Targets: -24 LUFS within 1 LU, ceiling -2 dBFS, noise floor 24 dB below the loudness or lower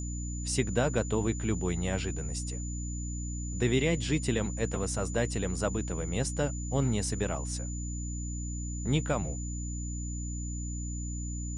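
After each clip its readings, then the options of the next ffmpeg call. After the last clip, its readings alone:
hum 60 Hz; harmonics up to 300 Hz; hum level -33 dBFS; steady tone 7000 Hz; tone level -42 dBFS; loudness -32.0 LUFS; peak -13.5 dBFS; loudness target -24.0 LUFS
-> -af "bandreject=f=60:t=h:w=6,bandreject=f=120:t=h:w=6,bandreject=f=180:t=h:w=6,bandreject=f=240:t=h:w=6,bandreject=f=300:t=h:w=6"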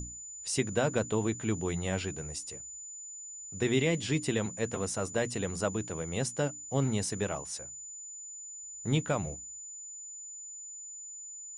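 hum none; steady tone 7000 Hz; tone level -42 dBFS
-> -af "bandreject=f=7k:w=30"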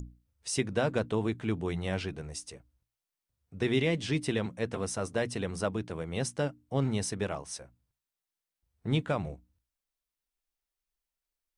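steady tone none; loudness -32.5 LUFS; peak -14.5 dBFS; loudness target -24.0 LUFS
-> -af "volume=8.5dB"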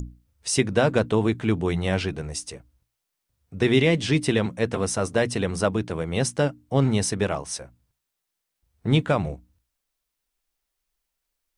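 loudness -24.0 LUFS; peak -6.0 dBFS; noise floor -82 dBFS

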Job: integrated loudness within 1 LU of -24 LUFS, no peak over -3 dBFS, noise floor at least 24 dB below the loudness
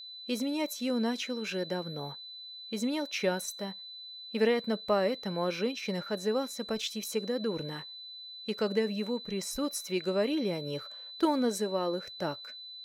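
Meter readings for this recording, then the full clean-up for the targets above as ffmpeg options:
steady tone 4000 Hz; tone level -43 dBFS; loudness -33.0 LUFS; peak -14.5 dBFS; loudness target -24.0 LUFS
-> -af "bandreject=f=4k:w=30"
-af "volume=9dB"

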